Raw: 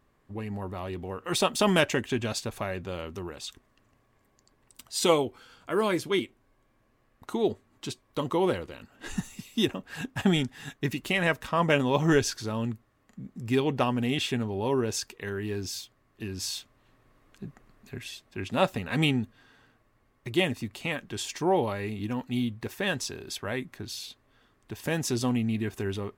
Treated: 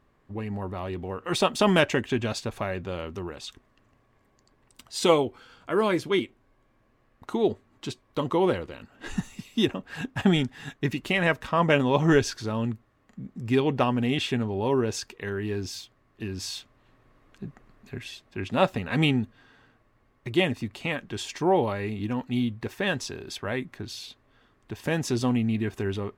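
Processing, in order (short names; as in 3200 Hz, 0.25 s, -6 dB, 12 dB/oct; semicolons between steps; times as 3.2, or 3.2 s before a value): high shelf 6700 Hz -10.5 dB; gain +2.5 dB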